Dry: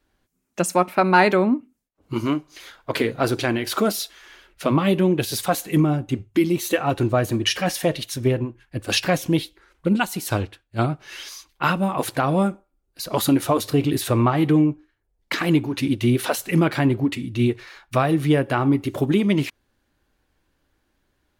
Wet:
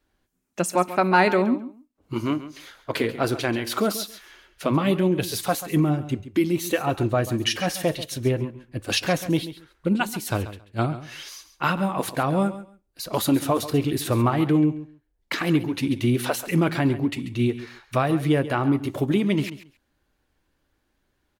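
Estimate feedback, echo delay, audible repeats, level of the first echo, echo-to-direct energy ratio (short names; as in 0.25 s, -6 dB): 17%, 0.137 s, 2, -14.0 dB, -14.0 dB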